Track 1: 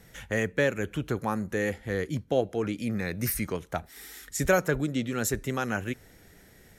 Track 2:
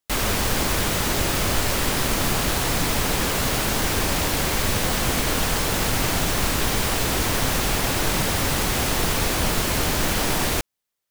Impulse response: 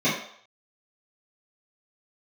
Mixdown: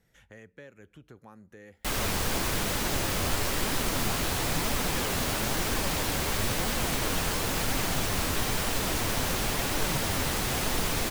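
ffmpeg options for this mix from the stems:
-filter_complex "[0:a]acompressor=threshold=0.0158:ratio=2,highshelf=f=10000:g=-6,volume=0.178[s0];[1:a]flanger=delay=3.2:depth=9.4:regen=62:speed=1:shape=triangular,adelay=1750,volume=0.794[s1];[s0][s1]amix=inputs=2:normalize=0"

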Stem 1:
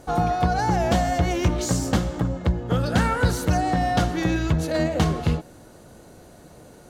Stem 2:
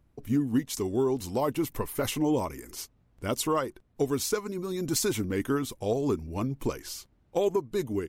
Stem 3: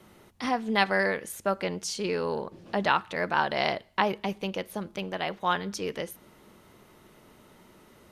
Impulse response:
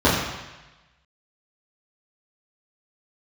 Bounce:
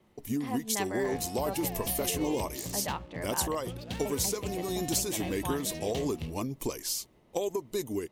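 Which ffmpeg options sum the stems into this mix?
-filter_complex "[0:a]highshelf=f=2100:t=q:w=1.5:g=7.5,adynamicsmooth=sensitivity=4.5:basefreq=560,adelay=950,volume=0.126[s0];[1:a]agate=range=0.0224:threshold=0.00126:ratio=3:detection=peak,bass=f=250:g=-6,treble=f=4000:g=9,acompressor=threshold=0.0398:ratio=6,volume=1.06[s1];[2:a]highshelf=f=5400:g=-11.5,volume=0.335,asplit=3[s2][s3][s4];[s2]atrim=end=3.55,asetpts=PTS-STARTPTS,afade=t=out:st=3.546:d=0.004:c=hsin[s5];[s3]atrim=start=3.55:end=4.05,asetpts=PTS-STARTPTS,volume=0[s6];[s4]atrim=start=4.05,asetpts=PTS-STARTPTS,afade=t=in:d=0.004:c=hsin[s7];[s5][s6][s7]concat=n=3:v=0:a=1[s8];[s0][s1][s8]amix=inputs=3:normalize=0,equalizer=f=1400:t=o:w=0.35:g=-9"

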